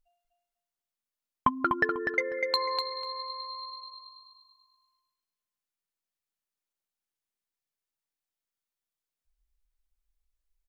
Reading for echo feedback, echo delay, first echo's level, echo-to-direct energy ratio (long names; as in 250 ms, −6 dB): 22%, 247 ms, −5.0 dB, −5.0 dB